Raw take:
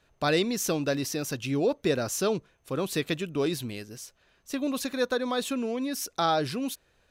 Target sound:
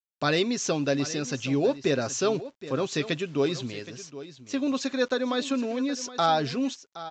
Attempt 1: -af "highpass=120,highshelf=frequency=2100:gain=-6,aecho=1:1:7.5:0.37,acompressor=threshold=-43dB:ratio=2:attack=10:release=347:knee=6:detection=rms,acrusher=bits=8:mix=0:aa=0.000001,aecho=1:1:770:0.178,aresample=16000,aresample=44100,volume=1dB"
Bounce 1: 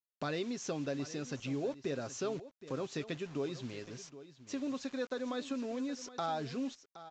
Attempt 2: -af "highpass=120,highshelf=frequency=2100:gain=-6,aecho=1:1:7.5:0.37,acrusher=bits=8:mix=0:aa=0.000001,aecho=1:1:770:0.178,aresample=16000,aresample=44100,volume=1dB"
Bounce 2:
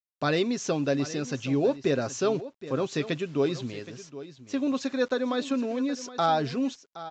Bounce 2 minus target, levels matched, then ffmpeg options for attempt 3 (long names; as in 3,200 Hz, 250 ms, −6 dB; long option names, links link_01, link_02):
4,000 Hz band −4.0 dB
-af "highpass=120,aecho=1:1:7.5:0.37,acrusher=bits=8:mix=0:aa=0.000001,aecho=1:1:770:0.178,aresample=16000,aresample=44100,volume=1dB"